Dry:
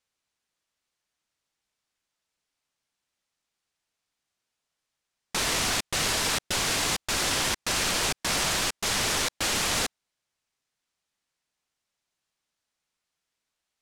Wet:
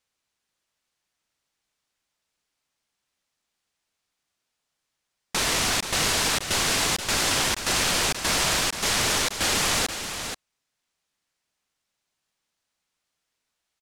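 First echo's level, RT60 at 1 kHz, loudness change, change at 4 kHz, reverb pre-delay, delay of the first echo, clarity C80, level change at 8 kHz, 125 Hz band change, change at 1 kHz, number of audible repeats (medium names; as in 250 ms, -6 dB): -8.5 dB, no reverb, +3.0 dB, +3.0 dB, no reverb, 480 ms, no reverb, +3.0 dB, +3.0 dB, +3.0 dB, 1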